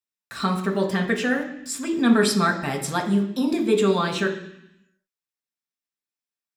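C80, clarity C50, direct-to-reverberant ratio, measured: 11.0 dB, 8.5 dB, 0.5 dB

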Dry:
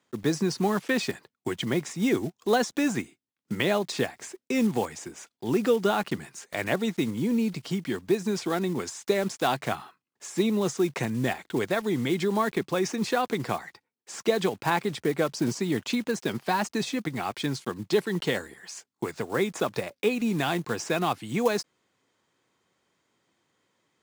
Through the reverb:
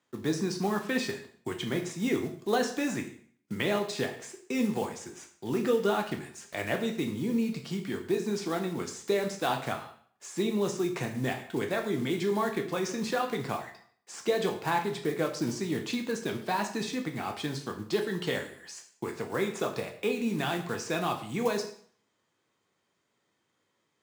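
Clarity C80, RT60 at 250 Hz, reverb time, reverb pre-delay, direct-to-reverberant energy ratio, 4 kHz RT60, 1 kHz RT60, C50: 12.5 dB, 0.55 s, 0.55 s, 6 ms, 3.5 dB, 0.50 s, 0.55 s, 9.5 dB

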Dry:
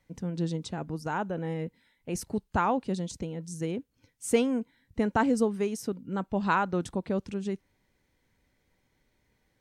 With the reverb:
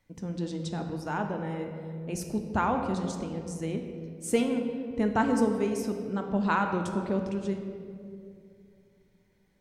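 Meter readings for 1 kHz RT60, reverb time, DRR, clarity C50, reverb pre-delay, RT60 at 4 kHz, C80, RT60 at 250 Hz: 2.0 s, 2.5 s, 4.0 dB, 6.0 dB, 3 ms, 1.3 s, 7.0 dB, 2.9 s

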